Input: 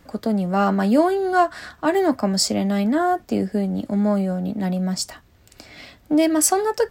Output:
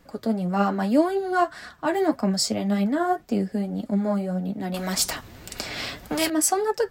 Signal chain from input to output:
flanger 1.8 Hz, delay 3.9 ms, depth 5.5 ms, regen +34%
0:04.74–0:06.30: every bin compressed towards the loudest bin 2 to 1

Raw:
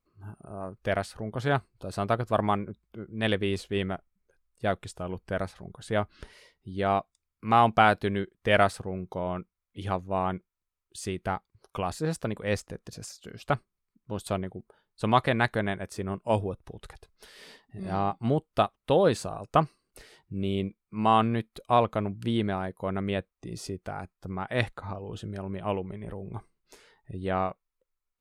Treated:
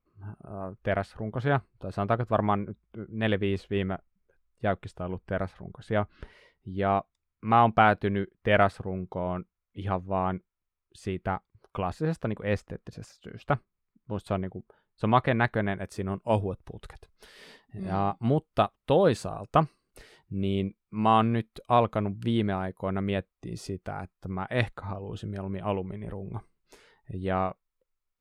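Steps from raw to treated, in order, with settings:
bass and treble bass +2 dB, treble −14 dB, from 0:15.77 treble −4 dB

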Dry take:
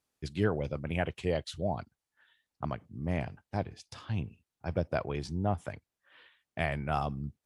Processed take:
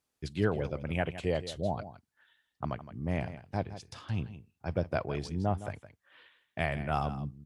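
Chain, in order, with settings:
single-tap delay 164 ms −13.5 dB

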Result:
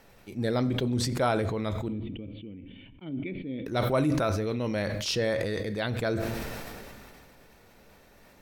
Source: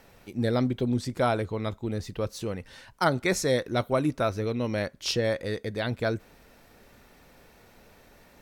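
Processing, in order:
0:01.88–0:03.66: formant resonators in series i
on a send at −13.5 dB: convolution reverb RT60 0.60 s, pre-delay 5 ms
on the sum: level that may fall only so fast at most 23 dB per second
level −2 dB

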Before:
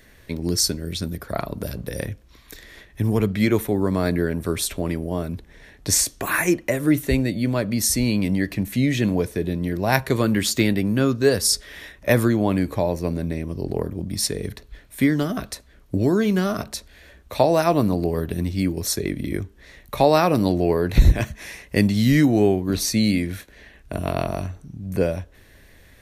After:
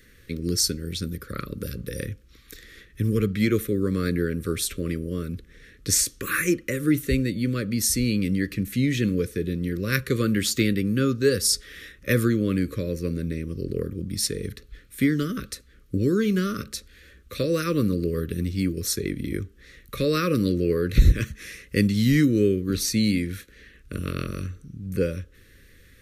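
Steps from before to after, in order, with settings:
elliptic band-stop filter 520–1,200 Hz, stop band 50 dB
level −2 dB

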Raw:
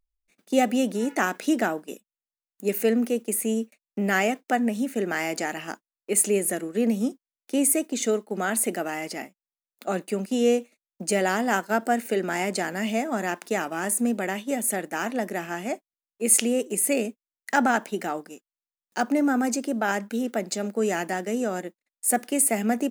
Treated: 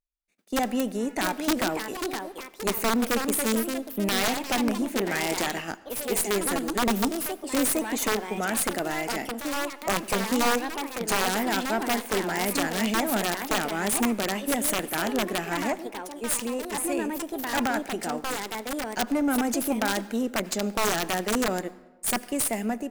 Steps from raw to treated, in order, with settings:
automatic gain control gain up to 13.5 dB
tube saturation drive 10 dB, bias 0.45
wrap-around overflow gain 9.5 dB
delay with pitch and tempo change per echo 775 ms, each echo +3 semitones, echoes 2, each echo −6 dB
on a send: convolution reverb RT60 1.1 s, pre-delay 73 ms, DRR 18.5 dB
on the sum: level −8 dB

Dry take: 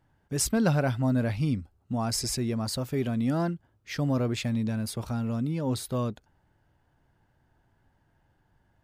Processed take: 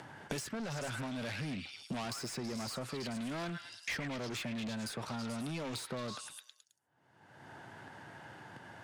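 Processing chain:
noise gate −56 dBFS, range −59 dB
brickwall limiter −24 dBFS, peak gain reduction 10.5 dB
high-pass filter 110 Hz 24 dB per octave
low-shelf EQ 330 Hz −9.5 dB
upward compression, threshold −48 dBFS
low-pass filter 11,000 Hz 24 dB per octave
high-shelf EQ 5,400 Hz −4.5 dB
on a send: echo through a band-pass that steps 107 ms, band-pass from 1,700 Hz, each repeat 0.7 octaves, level −4 dB
on the sum: soft clipping −39.5 dBFS, distortion −9 dB
multiband upward and downward compressor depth 100%
level +3 dB

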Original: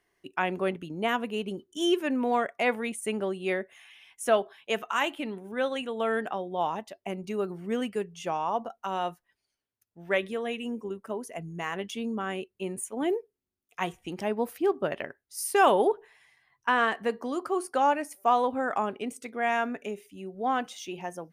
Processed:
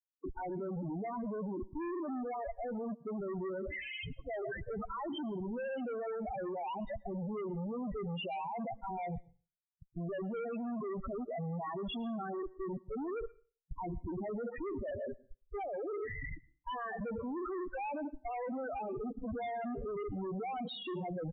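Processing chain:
expanding power law on the bin magnitudes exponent 1.8
parametric band 850 Hz +3 dB 1.9 octaves
reversed playback
downward compressor 10 to 1, threshold −35 dBFS, peak gain reduction 21 dB
reversed playback
brickwall limiter −37 dBFS, peak gain reduction 11 dB
comparator with hysteresis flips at −58 dBFS
spectral peaks only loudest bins 8
on a send at −22.5 dB: convolution reverb RT60 0.35 s, pre-delay 103 ms
on the sum: downsampling to 8,000 Hz
level +8 dB

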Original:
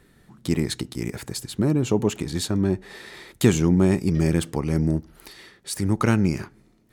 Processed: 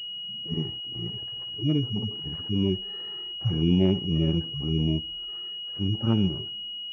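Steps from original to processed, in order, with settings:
harmonic-percussive split with one part muted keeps harmonic
switching amplifier with a slow clock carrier 2,900 Hz
level −2.5 dB

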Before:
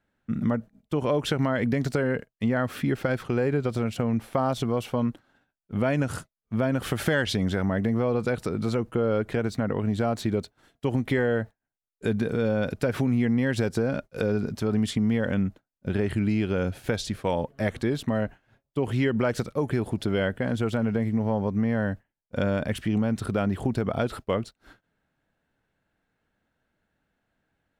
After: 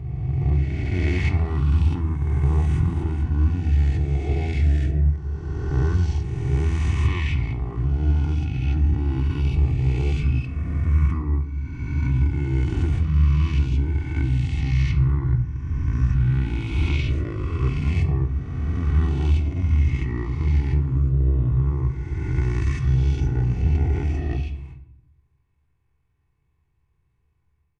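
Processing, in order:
peak hold with a rise ahead of every peak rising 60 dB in 2.27 s
octave-band graphic EQ 125/250/500/1,000/2,000/4,000/8,000 Hz +11/+6/−6/−7/−6/+5/−5 dB
pitch shifter −8.5 semitones
comb filter 2.7 ms, depth 57%
pitch-shifted copies added +3 semitones −16 dB
high-shelf EQ 8,500 Hz −6.5 dB
rectangular room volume 140 cubic metres, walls mixed, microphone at 0.41 metres
automatic gain control gain up to 5.5 dB
level −8 dB

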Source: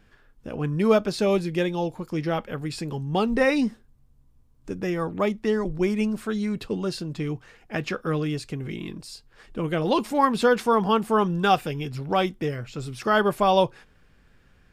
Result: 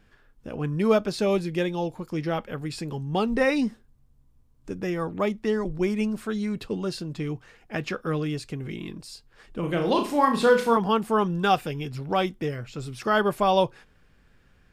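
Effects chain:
0:09.59–0:10.77: flutter between parallel walls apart 5.9 metres, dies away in 0.37 s
level −1.5 dB

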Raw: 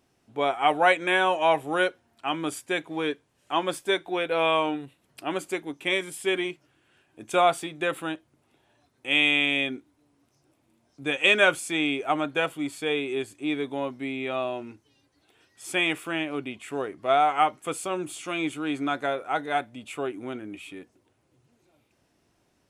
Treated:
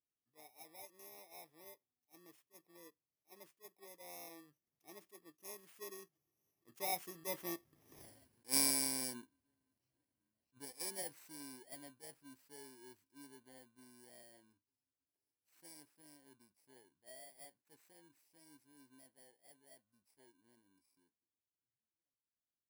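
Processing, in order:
samples in bit-reversed order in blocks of 32 samples
source passing by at 0:08.02, 25 m/s, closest 1.3 metres
level that may rise only so fast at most 420 dB per second
level +10 dB

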